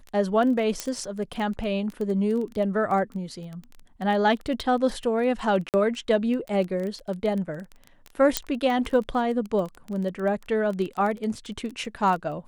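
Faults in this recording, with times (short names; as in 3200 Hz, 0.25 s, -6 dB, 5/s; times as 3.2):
crackle 15/s -29 dBFS
0.8 pop -11 dBFS
5.69–5.74 gap 48 ms
8.37 pop -4 dBFS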